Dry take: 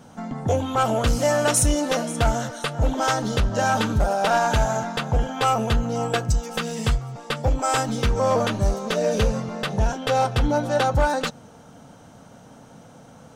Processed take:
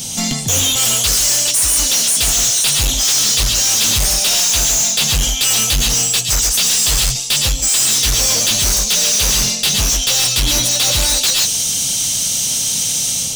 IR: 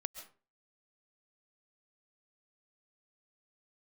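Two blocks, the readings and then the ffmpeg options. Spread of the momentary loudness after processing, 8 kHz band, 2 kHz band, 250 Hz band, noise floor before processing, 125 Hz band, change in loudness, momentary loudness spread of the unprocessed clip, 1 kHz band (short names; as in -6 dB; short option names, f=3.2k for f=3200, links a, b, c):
3 LU, +21.5 dB, +5.5 dB, -2.5 dB, -47 dBFS, 0.0 dB, +10.5 dB, 6 LU, -6.5 dB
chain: -filter_complex "[0:a]bass=f=250:g=2,treble=f=4k:g=4,acrossover=split=2100[a][b];[b]dynaudnorm=f=110:g=5:m=8.5dB[c];[a][c]amix=inputs=2:normalize=0[d];[1:a]atrim=start_sample=2205,afade=t=out:st=0.21:d=0.01,atrim=end_sample=9702[e];[d][e]afir=irnorm=-1:irlink=0,aexciter=amount=13.6:drive=5.6:freq=2.3k,lowshelf=f=160:g=10.5,areverse,acompressor=threshold=-14dB:ratio=6,areverse,asoftclip=type=hard:threshold=-21dB,volume=8.5dB"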